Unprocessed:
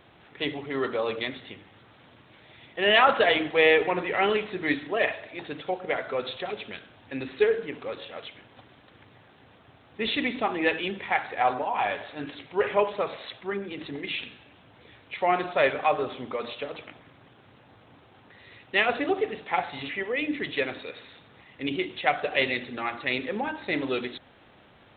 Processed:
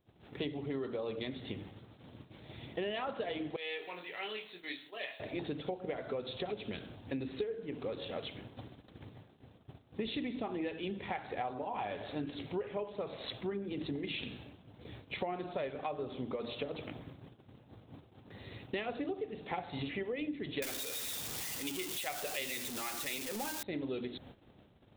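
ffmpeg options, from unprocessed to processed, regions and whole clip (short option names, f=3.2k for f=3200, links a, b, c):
-filter_complex "[0:a]asettb=1/sr,asplit=3[a][b][c];[a]atrim=end=3.564[d];[b]atrim=start=3.56:end=5.2,asetpts=PTS-STARTPTS,afade=t=in:d=0.004:c=qsin,afade=t=out:st=1.636:d=0.004:c=qsin,aderivative,asplit=2[e][f];[f]adelay=23,volume=-6dB[g];[e][g]amix=inputs=2:normalize=0,atrim=end_sample=72324[h];[c]atrim=start=5.196[i];[d][h]acrossfade=d=0.004:c1=hsin:c2=qsin[j];[j][i]acrossfade=d=0.004:c1=qsin:c2=hsin,asettb=1/sr,asplit=3[k][l][m];[k]atrim=end=20.624[n];[l]atrim=start=20.62:end=23.63,asetpts=PTS-STARTPTS,afade=t=in:d=0.004:c=qsin,afade=t=out:st=3.006:d=0.004:c=qsin,aeval=exprs='val(0)+0.5*0.0501*sgn(val(0))':c=same,tiltshelf=f=670:g=-8.5[o];[m]atrim=start=23.626[p];[n][o]acrossfade=d=0.004:c1=hsin:c2=qsin[q];[q][p]acrossfade=d=0.004:c1=qsin:c2=hsin,agate=range=-25dB:threshold=-53dB:ratio=16:detection=peak,equalizer=f=1.7k:w=0.39:g=-15,acompressor=threshold=-44dB:ratio=12,volume=9.5dB"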